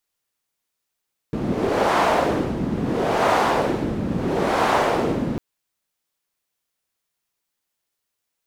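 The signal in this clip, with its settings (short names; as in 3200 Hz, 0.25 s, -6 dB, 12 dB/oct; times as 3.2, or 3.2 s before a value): wind-like swept noise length 4.05 s, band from 200 Hz, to 840 Hz, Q 1.4, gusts 3, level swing 6 dB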